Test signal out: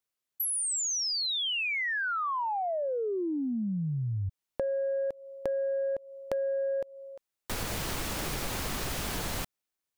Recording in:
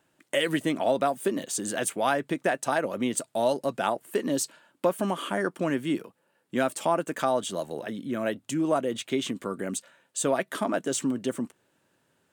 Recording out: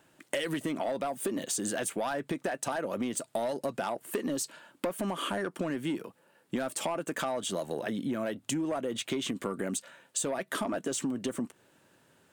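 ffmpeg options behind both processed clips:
ffmpeg -i in.wav -filter_complex "[0:a]asplit=2[link_01][link_02];[link_02]alimiter=limit=-21dB:level=0:latency=1,volume=-2.5dB[link_03];[link_01][link_03]amix=inputs=2:normalize=0,aeval=exprs='0.355*sin(PI/2*1.58*val(0)/0.355)':channel_layout=same,acompressor=threshold=-22dB:ratio=10,volume=-7dB" out.wav

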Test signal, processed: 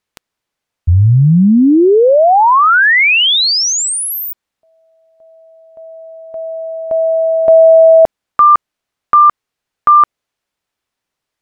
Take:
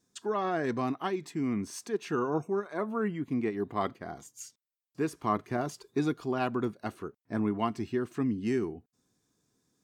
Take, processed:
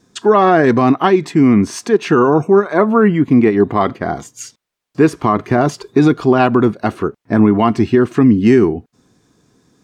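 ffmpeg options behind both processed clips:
ffmpeg -i in.wav -af "aemphasis=mode=reproduction:type=50kf,alimiter=level_in=22dB:limit=-1dB:release=50:level=0:latency=1,volume=-1dB" out.wav

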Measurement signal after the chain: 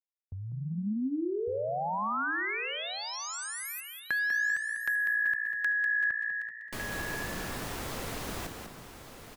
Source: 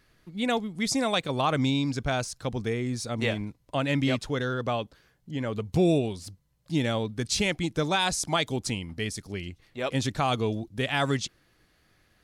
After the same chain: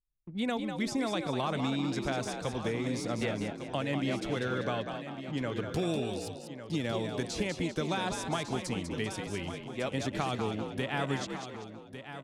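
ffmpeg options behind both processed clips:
ffmpeg -i in.wav -filter_complex "[0:a]acrossover=split=190|1800[link_01][link_02][link_03];[link_01]acompressor=threshold=-41dB:ratio=4[link_04];[link_02]acompressor=threshold=-32dB:ratio=4[link_05];[link_03]acompressor=threshold=-42dB:ratio=4[link_06];[link_04][link_05][link_06]amix=inputs=3:normalize=0,agate=range=-15dB:threshold=-53dB:ratio=16:detection=peak,asplit=2[link_07][link_08];[link_08]asplit=6[link_09][link_10][link_11][link_12][link_13][link_14];[link_09]adelay=196,afreqshift=58,volume=-7dB[link_15];[link_10]adelay=392,afreqshift=116,volume=-13.6dB[link_16];[link_11]adelay=588,afreqshift=174,volume=-20.1dB[link_17];[link_12]adelay=784,afreqshift=232,volume=-26.7dB[link_18];[link_13]adelay=980,afreqshift=290,volume=-33.2dB[link_19];[link_14]adelay=1176,afreqshift=348,volume=-39.8dB[link_20];[link_15][link_16][link_17][link_18][link_19][link_20]amix=inputs=6:normalize=0[link_21];[link_07][link_21]amix=inputs=2:normalize=0,anlmdn=0.00631,asplit=2[link_22][link_23];[link_23]aecho=0:1:1152:0.282[link_24];[link_22][link_24]amix=inputs=2:normalize=0" out.wav

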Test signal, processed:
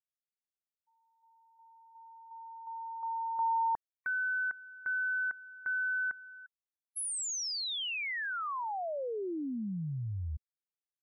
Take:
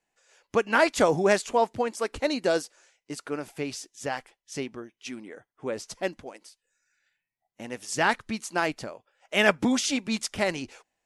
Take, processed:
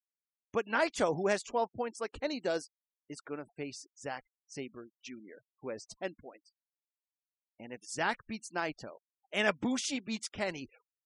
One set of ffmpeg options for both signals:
ffmpeg -i in.wav -af "afftfilt=real='re*gte(hypot(re,im),0.00891)':imag='im*gte(hypot(re,im),0.00891)':win_size=1024:overlap=0.75,volume=-8dB" -ar 44100 -c:a libmp3lame -b:a 48k out.mp3

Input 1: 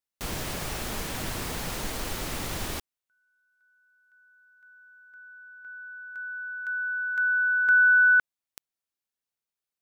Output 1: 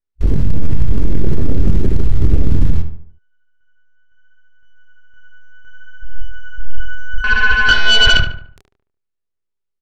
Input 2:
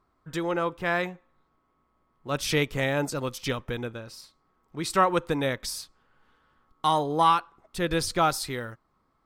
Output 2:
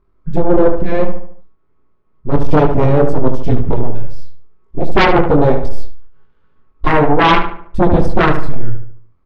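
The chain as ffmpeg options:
ffmpeg -i in.wav -filter_complex "[0:a]aeval=exprs='if(lt(val(0),0),0.251*val(0),val(0))':channel_layout=same,aemphasis=mode=reproduction:type=bsi,bandreject=frequency=760:width=12,afwtdn=0.0631,equalizer=frequency=400:width_type=o:width=0.33:gain=9,flanger=delay=22.5:depth=5.2:speed=0.64,aeval=exprs='0.447*sin(PI/2*7.08*val(0)/0.447)':channel_layout=same,asplit=2[link_01][link_02];[link_02]adelay=73,lowpass=frequency=2500:poles=1,volume=-7.5dB,asplit=2[link_03][link_04];[link_04]adelay=73,lowpass=frequency=2500:poles=1,volume=0.45,asplit=2[link_05][link_06];[link_06]adelay=73,lowpass=frequency=2500:poles=1,volume=0.45,asplit=2[link_07][link_08];[link_08]adelay=73,lowpass=frequency=2500:poles=1,volume=0.45,asplit=2[link_09][link_10];[link_10]adelay=73,lowpass=frequency=2500:poles=1,volume=0.45[link_11];[link_03][link_05][link_07][link_09][link_11]amix=inputs=5:normalize=0[link_12];[link_01][link_12]amix=inputs=2:normalize=0,volume=1dB" out.wav

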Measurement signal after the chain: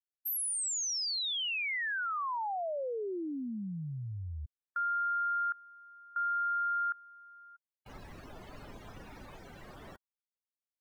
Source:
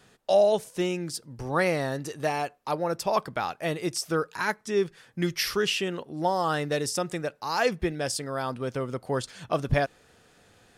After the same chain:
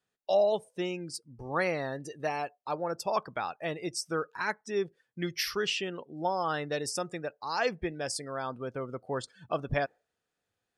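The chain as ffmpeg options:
ffmpeg -i in.wav -af "afftdn=noise_reduction=22:noise_floor=-41,lowshelf=frequency=300:gain=-5.5,volume=-3.5dB" out.wav

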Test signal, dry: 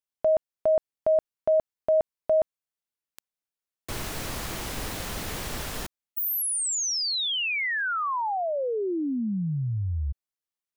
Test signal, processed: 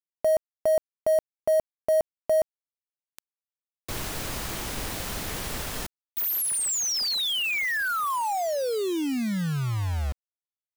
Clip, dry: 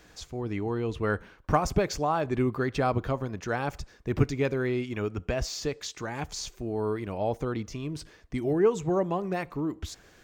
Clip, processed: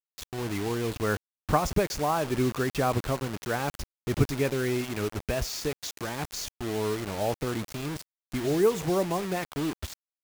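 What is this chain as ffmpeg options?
ffmpeg -i in.wav -af "acrusher=bits=5:mix=0:aa=0.000001" out.wav

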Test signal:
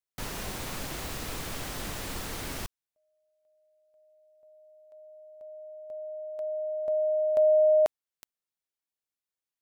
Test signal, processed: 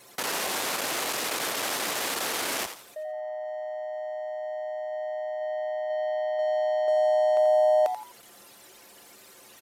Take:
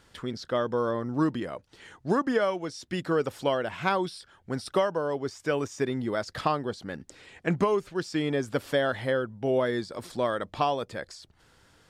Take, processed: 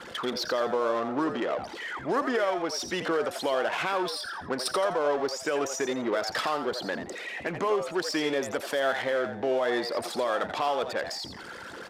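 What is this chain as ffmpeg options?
ffmpeg -i in.wav -filter_complex "[0:a]aeval=exprs='val(0)+0.5*0.0188*sgn(val(0))':channel_layout=same,anlmdn=6.31,highpass=410,asplit=2[link_01][link_02];[link_02]acompressor=threshold=-34dB:ratio=6:release=263,volume=2dB[link_03];[link_01][link_03]amix=inputs=2:normalize=0,alimiter=limit=-17.5dB:level=0:latency=1:release=95,areverse,acompressor=mode=upward:threshold=-29dB:ratio=2.5:attack=0.1:release=24:knee=2.83:detection=peak,areverse,asplit=4[link_04][link_05][link_06][link_07];[link_05]adelay=85,afreqshift=120,volume=-9dB[link_08];[link_06]adelay=170,afreqshift=240,volume=-19.5dB[link_09];[link_07]adelay=255,afreqshift=360,volume=-29.9dB[link_10];[link_04][link_08][link_09][link_10]amix=inputs=4:normalize=0,aresample=32000,aresample=44100" out.wav

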